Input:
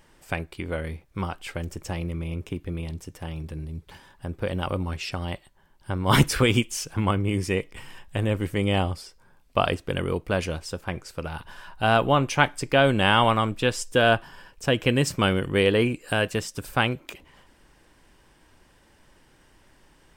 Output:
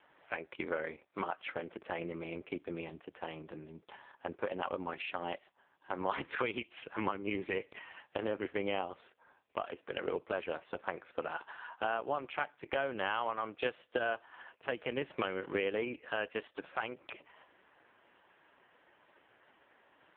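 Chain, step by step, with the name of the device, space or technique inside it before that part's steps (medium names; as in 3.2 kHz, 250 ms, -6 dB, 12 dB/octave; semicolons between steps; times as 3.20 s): 7.10–7.56 s: dynamic bell 520 Hz, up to -3 dB, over -42 dBFS, Q 2.9; voicemail (band-pass 430–2800 Hz; compression 10:1, threshold -31 dBFS, peak gain reduction 17.5 dB; trim +2 dB; AMR-NB 4.75 kbps 8 kHz)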